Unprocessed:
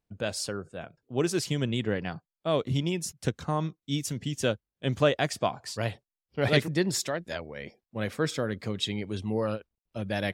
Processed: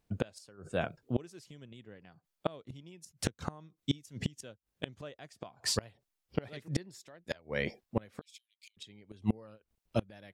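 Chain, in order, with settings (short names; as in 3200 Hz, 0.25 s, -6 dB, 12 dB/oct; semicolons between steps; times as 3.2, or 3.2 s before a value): flipped gate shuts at -23 dBFS, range -30 dB; 8.21–8.77 rippled Chebyshev high-pass 2300 Hz, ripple 3 dB; gain +7 dB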